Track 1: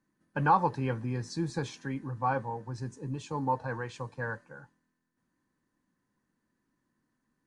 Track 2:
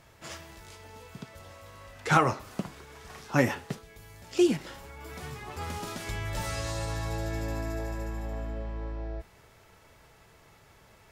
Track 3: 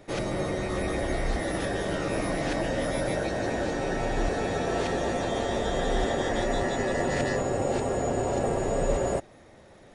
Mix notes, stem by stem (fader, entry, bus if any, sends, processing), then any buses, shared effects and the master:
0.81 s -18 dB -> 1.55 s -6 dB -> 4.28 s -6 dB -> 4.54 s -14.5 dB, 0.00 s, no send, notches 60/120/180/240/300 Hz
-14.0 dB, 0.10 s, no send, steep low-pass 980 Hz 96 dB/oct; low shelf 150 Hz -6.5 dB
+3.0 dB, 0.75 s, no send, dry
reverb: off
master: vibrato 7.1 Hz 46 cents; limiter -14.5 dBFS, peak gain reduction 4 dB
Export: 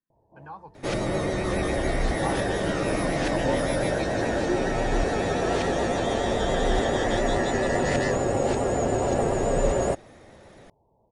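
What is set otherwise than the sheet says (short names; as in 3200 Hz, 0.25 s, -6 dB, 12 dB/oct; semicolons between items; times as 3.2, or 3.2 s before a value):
stem 2 -14.0 dB -> -4.5 dB; master: missing limiter -14.5 dBFS, peak gain reduction 4 dB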